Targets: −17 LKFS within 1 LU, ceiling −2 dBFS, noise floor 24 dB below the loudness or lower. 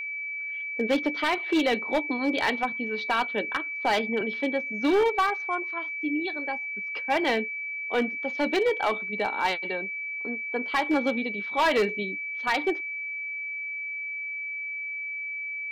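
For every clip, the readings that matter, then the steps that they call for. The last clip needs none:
share of clipped samples 1.2%; peaks flattened at −18.0 dBFS; interfering tone 2,300 Hz; level of the tone −31 dBFS; integrated loudness −27.5 LKFS; sample peak −18.0 dBFS; target loudness −17.0 LKFS
→ clipped peaks rebuilt −18 dBFS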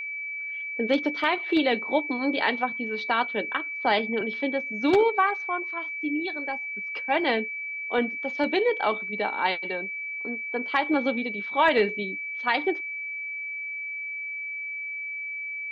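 share of clipped samples 0.0%; interfering tone 2,300 Hz; level of the tone −31 dBFS
→ notch filter 2,300 Hz, Q 30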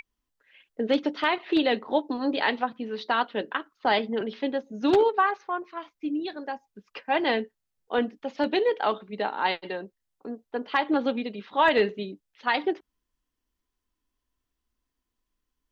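interfering tone none found; integrated loudness −27.0 LKFS; sample peak −8.5 dBFS; target loudness −17.0 LKFS
→ level +10 dB
brickwall limiter −2 dBFS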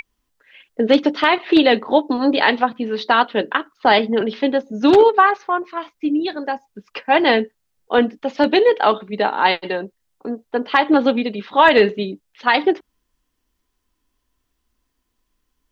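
integrated loudness −17.5 LKFS; sample peak −2.0 dBFS; background noise floor −73 dBFS

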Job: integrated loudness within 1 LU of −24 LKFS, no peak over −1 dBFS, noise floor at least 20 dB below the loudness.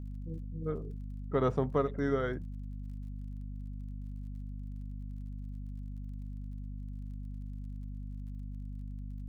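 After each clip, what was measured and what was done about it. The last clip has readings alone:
crackle rate 33 per second; mains hum 50 Hz; hum harmonics up to 250 Hz; level of the hum −38 dBFS; integrated loudness −38.5 LKFS; sample peak −16.0 dBFS; target loudness −24.0 LKFS
→ click removal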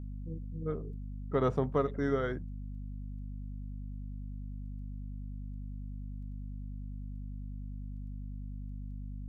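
crackle rate 0.11 per second; mains hum 50 Hz; hum harmonics up to 250 Hz; level of the hum −38 dBFS
→ hum removal 50 Hz, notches 5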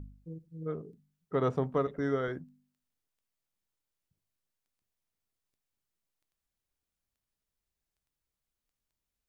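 mains hum none found; integrated loudness −33.5 LKFS; sample peak −16.0 dBFS; target loudness −24.0 LKFS
→ level +9.5 dB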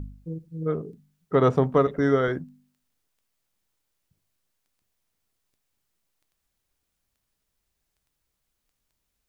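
integrated loudness −24.0 LKFS; sample peak −6.5 dBFS; background noise floor −79 dBFS

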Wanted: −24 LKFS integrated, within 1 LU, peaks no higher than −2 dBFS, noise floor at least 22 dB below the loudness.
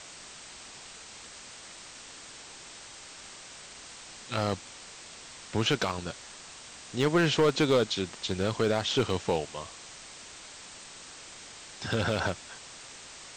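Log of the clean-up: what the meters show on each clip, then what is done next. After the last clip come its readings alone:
share of clipped samples 0.3%; peaks flattened at −17.5 dBFS; background noise floor −48 dBFS; target noise floor −51 dBFS; integrated loudness −29.0 LKFS; sample peak −17.5 dBFS; target loudness −24.0 LKFS
→ clipped peaks rebuilt −17.5 dBFS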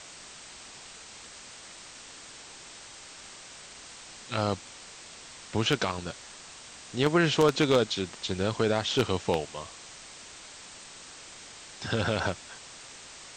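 share of clipped samples 0.0%; background noise floor −48 dBFS; target noise floor −50 dBFS
→ broadband denoise 6 dB, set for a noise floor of −48 dBFS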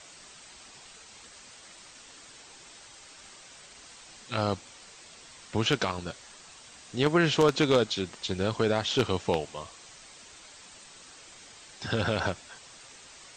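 background noise floor −51 dBFS; integrated loudness −28.0 LKFS; sample peak −8.5 dBFS; target loudness −24.0 LKFS
→ level +4 dB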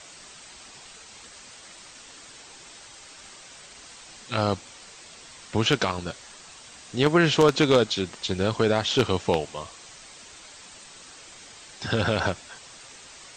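integrated loudness −24.0 LKFS; sample peak −4.5 dBFS; background noise floor −47 dBFS

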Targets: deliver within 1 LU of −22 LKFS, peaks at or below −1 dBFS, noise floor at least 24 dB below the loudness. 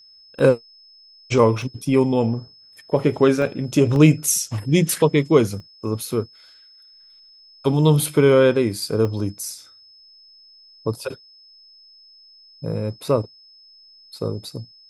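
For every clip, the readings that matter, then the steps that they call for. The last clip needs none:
number of dropouts 7; longest dropout 1.3 ms; interfering tone 5,200 Hz; level of the tone −47 dBFS; integrated loudness −20.0 LKFS; sample peak −1.5 dBFS; target loudness −22.0 LKFS
→ repair the gap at 0:00.39/0:01.62/0:03.42/0:03.96/0:05.60/0:06.12/0:09.05, 1.3 ms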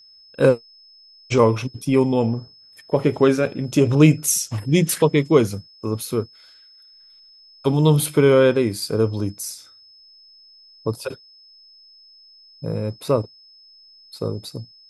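number of dropouts 0; interfering tone 5,200 Hz; level of the tone −47 dBFS
→ notch filter 5,200 Hz, Q 30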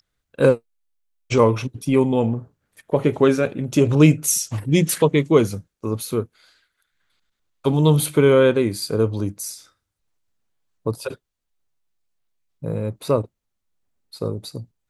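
interfering tone none found; integrated loudness −20.0 LKFS; sample peak −1.5 dBFS; target loudness −22.0 LKFS
→ level −2 dB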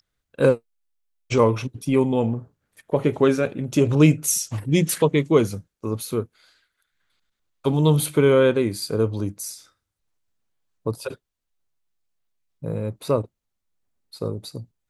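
integrated loudness −22.0 LKFS; sample peak −3.5 dBFS; background noise floor −80 dBFS

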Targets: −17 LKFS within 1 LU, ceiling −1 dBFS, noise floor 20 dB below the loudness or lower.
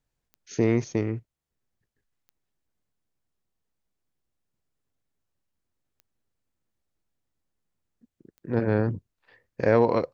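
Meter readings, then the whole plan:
number of clicks 4; integrated loudness −25.5 LKFS; sample peak −8.0 dBFS; target loudness −17.0 LKFS
→ click removal
level +8.5 dB
brickwall limiter −1 dBFS

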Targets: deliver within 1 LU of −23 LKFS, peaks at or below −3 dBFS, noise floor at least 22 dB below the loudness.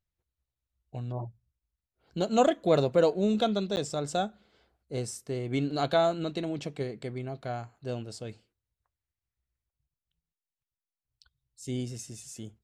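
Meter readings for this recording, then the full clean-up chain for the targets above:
number of dropouts 1; longest dropout 9.9 ms; integrated loudness −30.0 LKFS; sample peak −11.5 dBFS; target loudness −23.0 LKFS
→ repair the gap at 0:03.76, 9.9 ms
level +7 dB

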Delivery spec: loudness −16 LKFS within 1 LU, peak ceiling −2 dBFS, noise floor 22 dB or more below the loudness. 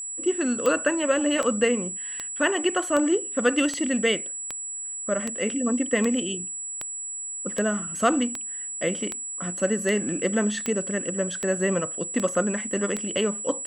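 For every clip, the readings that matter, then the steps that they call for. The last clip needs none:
number of clicks 17; interfering tone 7,800 Hz; level of the tone −31 dBFS; integrated loudness −25.0 LKFS; sample peak −8.0 dBFS; target loudness −16.0 LKFS
→ click removal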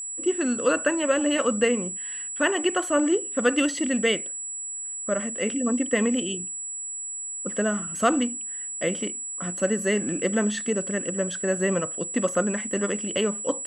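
number of clicks 0; interfering tone 7,800 Hz; level of the tone −31 dBFS
→ notch filter 7,800 Hz, Q 30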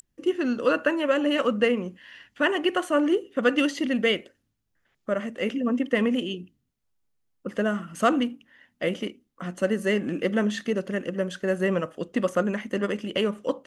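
interfering tone none found; integrated loudness −26.0 LKFS; sample peak −8.5 dBFS; target loudness −16.0 LKFS
→ level +10 dB
brickwall limiter −2 dBFS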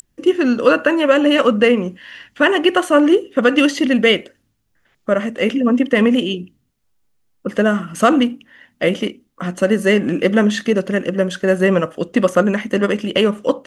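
integrated loudness −16.0 LKFS; sample peak −2.0 dBFS; background noise floor −65 dBFS

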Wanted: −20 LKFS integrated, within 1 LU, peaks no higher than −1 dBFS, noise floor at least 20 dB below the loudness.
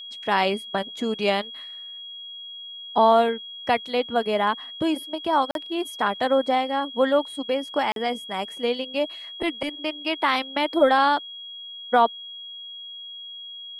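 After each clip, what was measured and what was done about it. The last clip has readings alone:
number of dropouts 2; longest dropout 42 ms; interfering tone 3,300 Hz; level of the tone −36 dBFS; integrated loudness −24.0 LKFS; sample peak −6.5 dBFS; target loudness −20.0 LKFS
→ repair the gap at 0:05.51/0:07.92, 42 ms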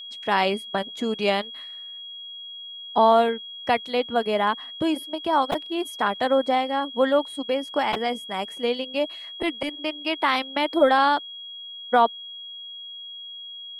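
number of dropouts 0; interfering tone 3,300 Hz; level of the tone −36 dBFS
→ notch filter 3,300 Hz, Q 30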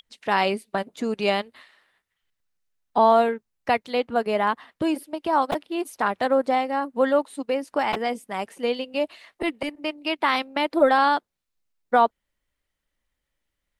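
interfering tone none found; integrated loudness −24.0 LKFS; sample peak −6.5 dBFS; target loudness −20.0 LKFS
→ level +4 dB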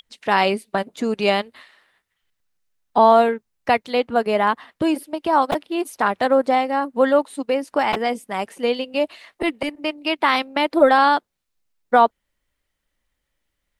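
integrated loudness −20.0 LKFS; sample peak −2.5 dBFS; background noise floor −78 dBFS

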